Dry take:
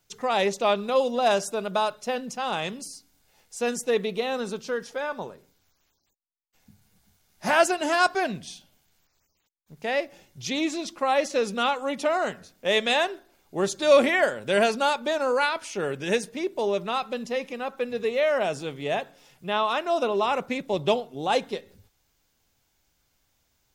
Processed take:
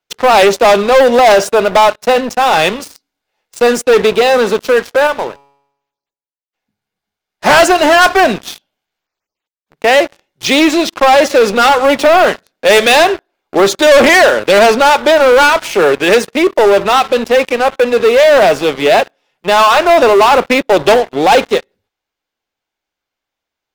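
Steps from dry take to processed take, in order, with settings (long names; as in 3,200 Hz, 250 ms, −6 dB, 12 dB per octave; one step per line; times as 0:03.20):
three-way crossover with the lows and the highs turned down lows −15 dB, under 280 Hz, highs −13 dB, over 4,100 Hz
leveller curve on the samples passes 5
0:05.07–0:07.46: tuned comb filter 140 Hz, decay 0.84 s, harmonics all, mix 40%
level +5 dB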